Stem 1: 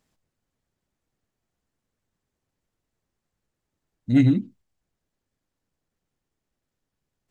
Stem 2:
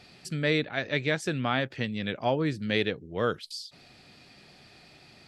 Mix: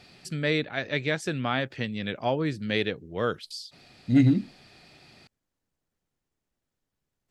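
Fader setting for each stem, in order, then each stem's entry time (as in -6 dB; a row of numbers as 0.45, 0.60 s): -2.0, 0.0 dB; 0.00, 0.00 s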